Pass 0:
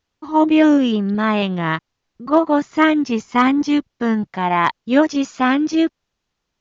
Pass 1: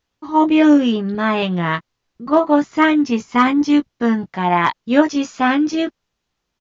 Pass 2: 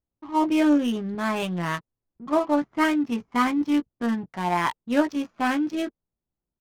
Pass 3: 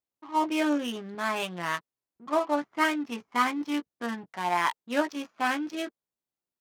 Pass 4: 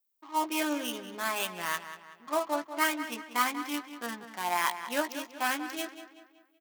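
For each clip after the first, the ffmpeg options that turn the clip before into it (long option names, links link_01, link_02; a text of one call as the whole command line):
ffmpeg -i in.wav -filter_complex "[0:a]asplit=2[link_01][link_02];[link_02]adelay=17,volume=-7dB[link_03];[link_01][link_03]amix=inputs=2:normalize=0" out.wav
ffmpeg -i in.wav -af "adynamicsmooth=sensitivity=4.5:basefreq=640,bandreject=frequency=450:width=12,volume=-8dB" out.wav
ffmpeg -i in.wav -af "highpass=frequency=680:poles=1" out.wav
ffmpeg -i in.wav -filter_complex "[0:a]aemphasis=mode=production:type=bsi,asplit=2[link_01][link_02];[link_02]adelay=189,lowpass=frequency=4600:poles=1,volume=-11dB,asplit=2[link_03][link_04];[link_04]adelay=189,lowpass=frequency=4600:poles=1,volume=0.45,asplit=2[link_05][link_06];[link_06]adelay=189,lowpass=frequency=4600:poles=1,volume=0.45,asplit=2[link_07][link_08];[link_08]adelay=189,lowpass=frequency=4600:poles=1,volume=0.45,asplit=2[link_09][link_10];[link_10]adelay=189,lowpass=frequency=4600:poles=1,volume=0.45[link_11];[link_01][link_03][link_05][link_07][link_09][link_11]amix=inputs=6:normalize=0,volume=-3dB" out.wav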